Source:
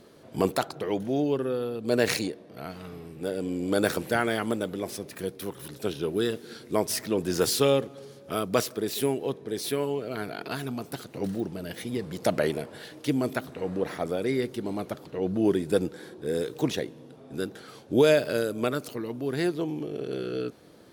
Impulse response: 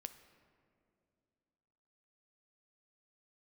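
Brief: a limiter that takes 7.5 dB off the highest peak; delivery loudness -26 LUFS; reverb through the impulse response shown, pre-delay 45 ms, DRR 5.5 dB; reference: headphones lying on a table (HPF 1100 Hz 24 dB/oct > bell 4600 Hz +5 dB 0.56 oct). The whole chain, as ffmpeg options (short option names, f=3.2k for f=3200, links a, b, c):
-filter_complex "[0:a]alimiter=limit=-17dB:level=0:latency=1,asplit=2[a][b];[1:a]atrim=start_sample=2205,adelay=45[c];[b][c]afir=irnorm=-1:irlink=0,volume=-1dB[d];[a][d]amix=inputs=2:normalize=0,highpass=f=1.1k:w=0.5412,highpass=f=1.1k:w=1.3066,equalizer=f=4.6k:t=o:w=0.56:g=5,volume=10dB"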